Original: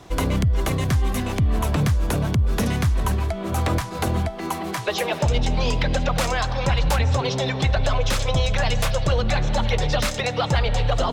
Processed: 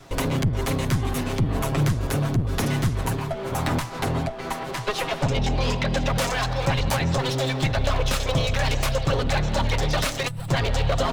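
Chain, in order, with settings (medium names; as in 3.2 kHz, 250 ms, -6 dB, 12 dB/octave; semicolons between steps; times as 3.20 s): comb filter that takes the minimum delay 7.4 ms; 3.92–5.97 s: treble shelf 9.5 kHz -8 dB; 10.28–10.49 s: time-frequency box 200–7600 Hz -18 dB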